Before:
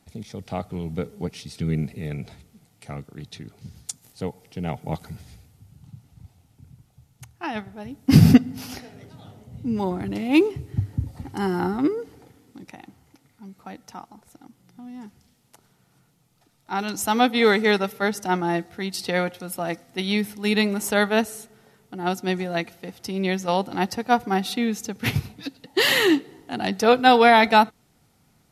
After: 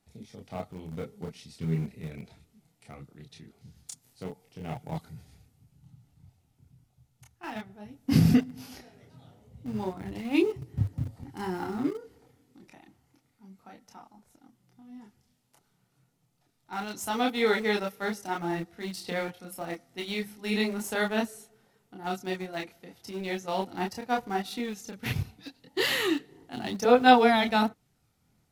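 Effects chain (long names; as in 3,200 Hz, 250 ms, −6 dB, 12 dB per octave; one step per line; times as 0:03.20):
multi-voice chorus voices 6, 0.77 Hz, delay 28 ms, depth 4.4 ms
in parallel at −10 dB: centre clipping without the shift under −27.5 dBFS
on the sum: level −7 dB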